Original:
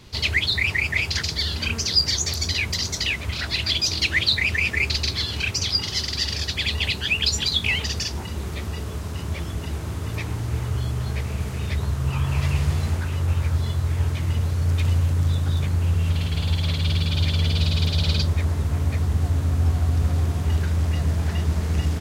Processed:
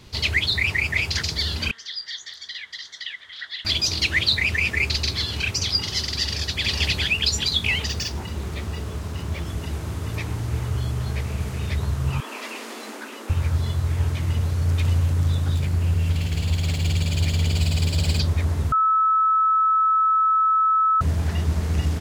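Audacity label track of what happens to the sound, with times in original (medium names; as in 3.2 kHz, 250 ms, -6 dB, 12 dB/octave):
1.710000	3.650000	two resonant band-passes 2.5 kHz, apart 0.82 oct
6.230000	6.660000	echo throw 410 ms, feedback 10%, level -1 dB
7.890000	9.460000	decimation joined by straight lines rate divided by 2×
12.200000	13.300000	Chebyshev high-pass 220 Hz, order 10
15.540000	18.200000	comb filter that takes the minimum delay 0.4 ms
18.720000	21.010000	bleep 1.3 kHz -15.5 dBFS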